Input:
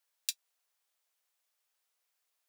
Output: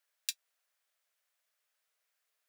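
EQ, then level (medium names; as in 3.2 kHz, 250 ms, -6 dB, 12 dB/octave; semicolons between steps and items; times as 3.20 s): rippled Chebyshev high-pass 430 Hz, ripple 6 dB; +4.0 dB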